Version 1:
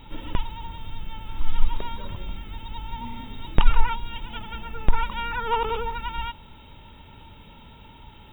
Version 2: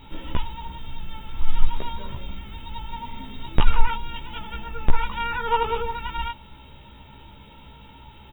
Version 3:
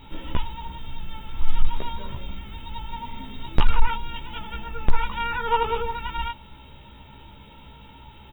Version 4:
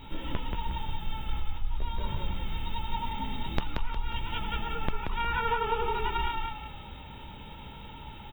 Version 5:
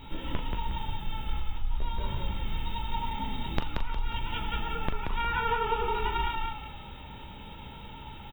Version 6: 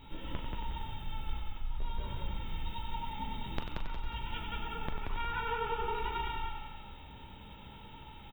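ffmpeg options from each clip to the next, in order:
ffmpeg -i in.wav -filter_complex "[0:a]asplit=2[link_01][link_02];[link_02]adelay=15,volume=-2.5dB[link_03];[link_01][link_03]amix=inputs=2:normalize=0,volume=-1dB" out.wav
ffmpeg -i in.wav -af "asoftclip=type=hard:threshold=-6dB" out.wav
ffmpeg -i in.wav -filter_complex "[0:a]acompressor=threshold=-26dB:ratio=10,asplit=6[link_01][link_02][link_03][link_04][link_05][link_06];[link_02]adelay=180,afreqshift=-35,volume=-3dB[link_07];[link_03]adelay=360,afreqshift=-70,volume=-11dB[link_08];[link_04]adelay=540,afreqshift=-105,volume=-18.9dB[link_09];[link_05]adelay=720,afreqshift=-140,volume=-26.9dB[link_10];[link_06]adelay=900,afreqshift=-175,volume=-34.8dB[link_11];[link_01][link_07][link_08][link_09][link_10][link_11]amix=inputs=6:normalize=0" out.wav
ffmpeg -i in.wav -filter_complex "[0:a]asplit=2[link_01][link_02];[link_02]adelay=40,volume=-10dB[link_03];[link_01][link_03]amix=inputs=2:normalize=0" out.wav
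ffmpeg -i in.wav -af "aecho=1:1:94|188|282|376|470|564|658:0.398|0.235|0.139|0.0818|0.0482|0.0285|0.0168,volume=-7dB" out.wav

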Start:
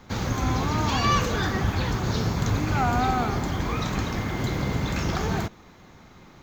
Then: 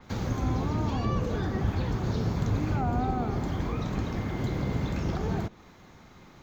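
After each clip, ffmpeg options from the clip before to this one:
ffmpeg -i in.wav -filter_complex "[0:a]acrossover=split=740[link_01][link_02];[link_02]acompressor=threshold=-39dB:ratio=6[link_03];[link_01][link_03]amix=inputs=2:normalize=0,adynamicequalizer=threshold=0.002:dfrequency=5400:dqfactor=0.7:tfrequency=5400:tqfactor=0.7:attack=5:release=100:ratio=0.375:range=2:mode=cutabove:tftype=highshelf,volume=-2.5dB" out.wav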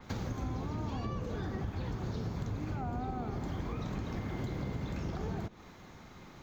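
ffmpeg -i in.wav -af "acompressor=threshold=-34dB:ratio=5" out.wav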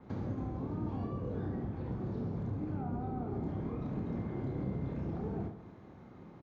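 ffmpeg -i in.wav -filter_complex "[0:a]bandpass=frequency=250:width_type=q:width=0.53:csg=0,asplit=2[link_01][link_02];[link_02]aecho=0:1:30|72|130.8|213.1|328.4:0.631|0.398|0.251|0.158|0.1[link_03];[link_01][link_03]amix=inputs=2:normalize=0" out.wav

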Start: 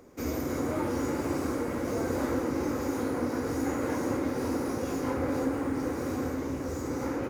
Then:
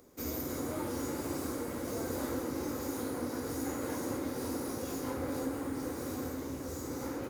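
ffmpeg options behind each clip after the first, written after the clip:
ffmpeg -i in.wav -af "aexciter=amount=2.1:drive=5.4:freq=3300,volume=-6.5dB" out.wav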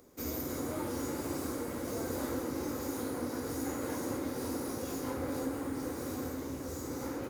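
ffmpeg -i in.wav -af anull out.wav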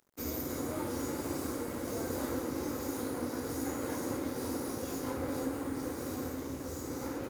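ffmpeg -i in.wav -af "aeval=exprs='sgn(val(0))*max(abs(val(0))-0.00168,0)':channel_layout=same,volume=1dB" out.wav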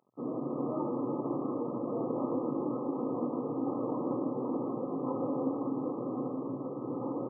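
ffmpeg -i in.wav -af "afftfilt=real='re*between(b*sr/4096,110,1300)':imag='im*between(b*sr/4096,110,1300)':win_size=4096:overlap=0.75,volume=3.5dB" out.wav

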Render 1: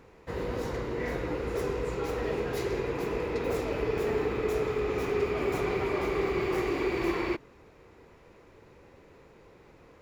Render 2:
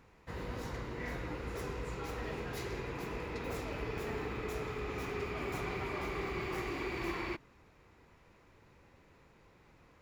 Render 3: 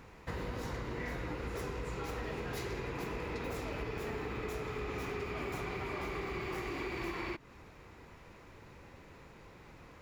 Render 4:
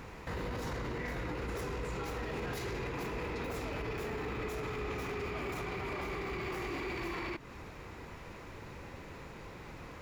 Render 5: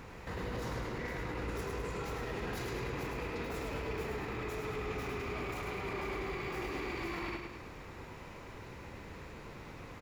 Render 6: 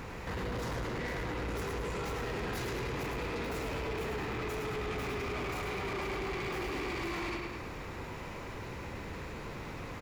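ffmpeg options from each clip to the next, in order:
ffmpeg -i in.wav -af "equalizer=frequency=440:width_type=o:width=1.1:gain=-8,volume=-4.5dB" out.wav
ffmpeg -i in.wav -af "acompressor=threshold=-44dB:ratio=6,volume=8dB" out.wav
ffmpeg -i in.wav -af "alimiter=level_in=13.5dB:limit=-24dB:level=0:latency=1:release=14,volume=-13.5dB,volume=7dB" out.wav
ffmpeg -i in.wav -af "aecho=1:1:105|210|315|420|525|630|735:0.562|0.292|0.152|0.0791|0.0411|0.0214|0.0111,volume=-2dB" out.wav
ffmpeg -i in.wav -af "asoftclip=type=tanh:threshold=-39.5dB,volume=7dB" out.wav

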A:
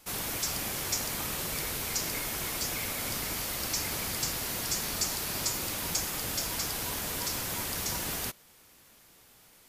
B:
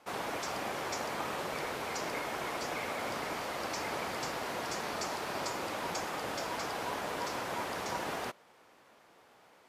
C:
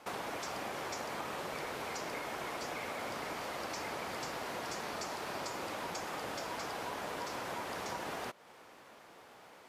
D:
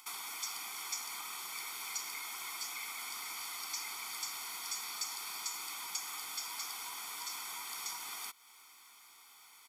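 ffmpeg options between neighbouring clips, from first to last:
ffmpeg -i in.wav -af "bandpass=frequency=750:width_type=q:width=0.84:csg=0,volume=6dB" out.wav
ffmpeg -i in.wav -af "acompressor=threshold=-45dB:ratio=3,volume=5dB" out.wav
ffmpeg -i in.wav -af "acompressor=mode=upward:threshold=-55dB:ratio=2.5,aderivative,aecho=1:1:0.9:1,volume=5.5dB" out.wav

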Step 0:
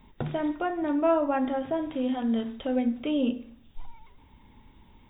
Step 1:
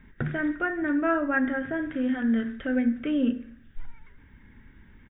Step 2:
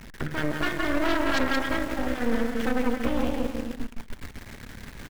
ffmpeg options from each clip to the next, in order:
ffmpeg -i in.wav -af "firequalizer=gain_entry='entry(210,0);entry(910,-13);entry(1600,12);entry(2500,-4);entry(4200,-14)':delay=0.05:min_phase=1,volume=3dB" out.wav
ffmpeg -i in.wav -af "aeval=exprs='val(0)+0.5*0.0237*sgn(val(0))':channel_layout=same,aecho=1:1:170|306|414.8|501.8|571.5:0.631|0.398|0.251|0.158|0.1,aeval=exprs='0.316*(cos(1*acos(clip(val(0)/0.316,-1,1)))-cos(1*PI/2))+0.141*(cos(6*acos(clip(val(0)/0.316,-1,1)))-cos(6*PI/2))+0.0224*(cos(8*acos(clip(val(0)/0.316,-1,1)))-cos(8*PI/2))':channel_layout=same,volume=-6.5dB" out.wav

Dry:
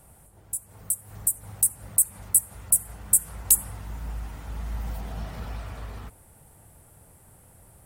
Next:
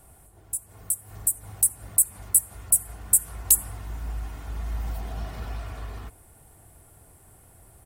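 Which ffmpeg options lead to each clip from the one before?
ffmpeg -i in.wav -af "aecho=1:1:2.8:0.35" out.wav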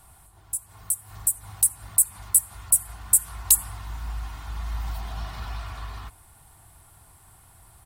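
ffmpeg -i in.wav -af "equalizer=frequency=250:width_type=o:width=1:gain=-4,equalizer=frequency=500:width_type=o:width=1:gain=-10,equalizer=frequency=1000:width_type=o:width=1:gain=8,equalizer=frequency=4000:width_type=o:width=1:gain=7" out.wav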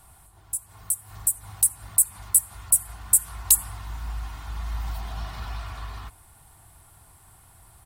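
ffmpeg -i in.wav -af anull out.wav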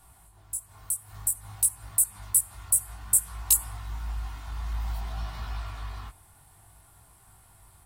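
ffmpeg -i in.wav -af "flanger=delay=17.5:depth=4.4:speed=0.56" out.wav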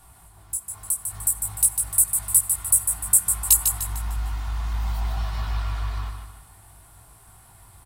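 ffmpeg -i in.wav -af "aecho=1:1:150|300|450|600|750:0.501|0.2|0.0802|0.0321|0.0128,volume=4.5dB" out.wav

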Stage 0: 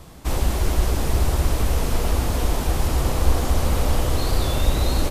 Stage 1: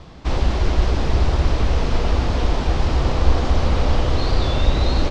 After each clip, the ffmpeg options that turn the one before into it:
ffmpeg -i in.wav -af "lowpass=frequency=5200:width=0.5412,lowpass=frequency=5200:width=1.3066,volume=2.5dB" out.wav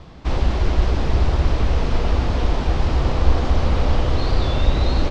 ffmpeg -i in.wav -af "bass=frequency=250:gain=1,treble=frequency=4000:gain=-3,volume=-1dB" out.wav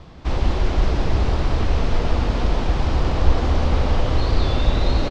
ffmpeg -i in.wav -af "aecho=1:1:180:0.501,volume=-1dB" out.wav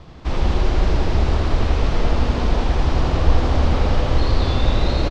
ffmpeg -i in.wav -af "aecho=1:1:80:0.631" out.wav

